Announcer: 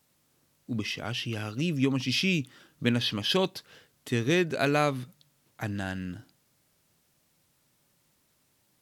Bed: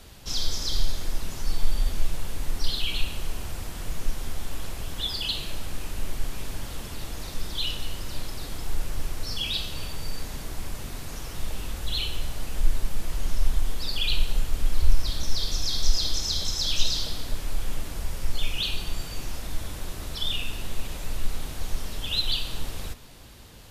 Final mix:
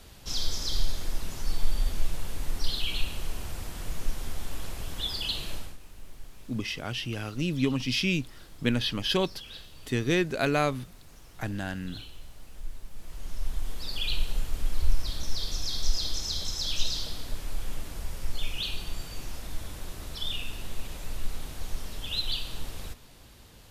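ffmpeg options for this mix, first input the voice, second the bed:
ffmpeg -i stem1.wav -i stem2.wav -filter_complex "[0:a]adelay=5800,volume=-0.5dB[link_01];[1:a]volume=9dB,afade=type=out:start_time=5.54:duration=0.23:silence=0.211349,afade=type=in:start_time=12.9:duration=1.11:silence=0.266073[link_02];[link_01][link_02]amix=inputs=2:normalize=0" out.wav

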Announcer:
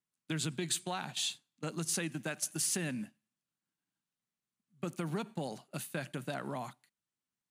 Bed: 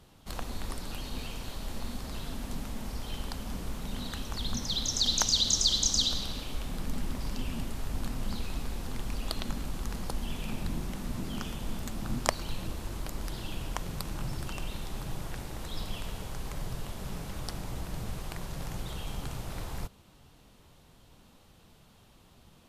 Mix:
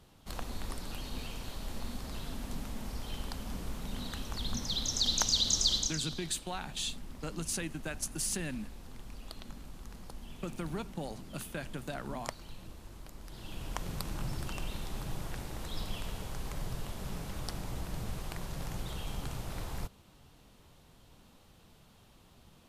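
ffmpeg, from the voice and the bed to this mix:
ffmpeg -i stem1.wav -i stem2.wav -filter_complex "[0:a]adelay=5600,volume=-1.5dB[link_01];[1:a]volume=8dB,afade=type=out:start_time=5.75:duration=0.21:silence=0.334965,afade=type=in:start_time=13.26:duration=0.63:silence=0.298538[link_02];[link_01][link_02]amix=inputs=2:normalize=0" out.wav

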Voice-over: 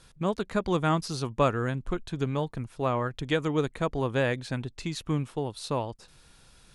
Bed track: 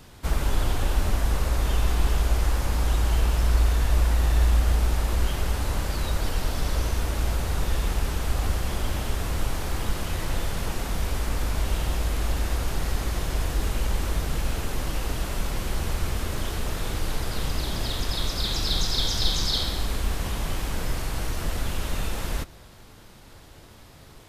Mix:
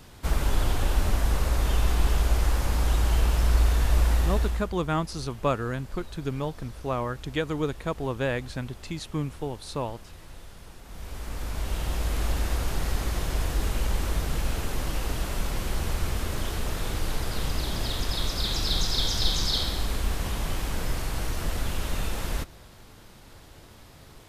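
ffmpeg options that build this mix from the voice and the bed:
ffmpeg -i stem1.wav -i stem2.wav -filter_complex "[0:a]adelay=4050,volume=-1.5dB[link_01];[1:a]volume=16.5dB,afade=type=out:start_time=4.15:duration=0.54:silence=0.133352,afade=type=in:start_time=10.82:duration=1.38:silence=0.141254[link_02];[link_01][link_02]amix=inputs=2:normalize=0" out.wav

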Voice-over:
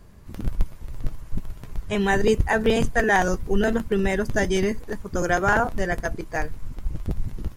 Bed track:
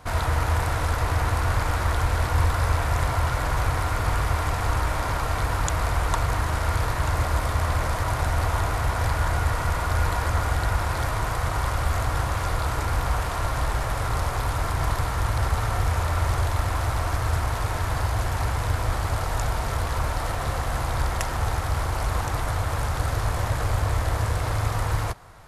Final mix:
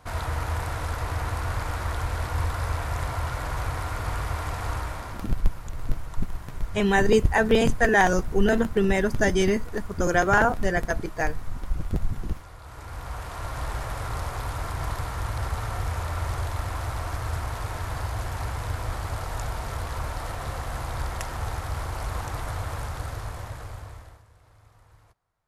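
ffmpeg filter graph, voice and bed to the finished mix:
ffmpeg -i stem1.wav -i stem2.wav -filter_complex "[0:a]adelay=4850,volume=0.5dB[link_01];[1:a]volume=8.5dB,afade=type=out:start_time=4.72:duration=0.63:silence=0.199526,afade=type=in:start_time=12.61:duration=1.12:silence=0.199526,afade=type=out:start_time=22.66:duration=1.57:silence=0.0501187[link_02];[link_01][link_02]amix=inputs=2:normalize=0" out.wav

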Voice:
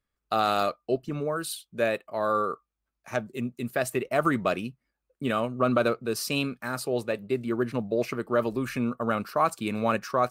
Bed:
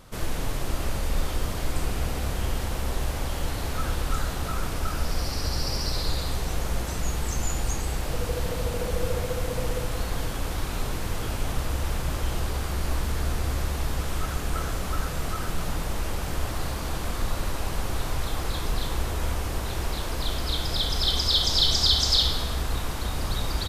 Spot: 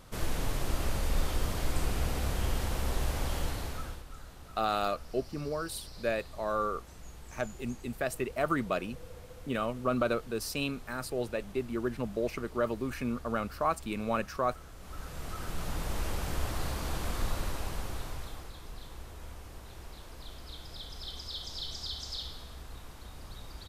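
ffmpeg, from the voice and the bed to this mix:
ffmpeg -i stem1.wav -i stem2.wav -filter_complex "[0:a]adelay=4250,volume=-5.5dB[link_01];[1:a]volume=12.5dB,afade=type=out:start_time=3.36:duration=0.68:silence=0.141254,afade=type=in:start_time=14.76:duration=1.24:silence=0.158489,afade=type=out:start_time=17.24:duration=1.29:silence=0.211349[link_02];[link_01][link_02]amix=inputs=2:normalize=0" out.wav

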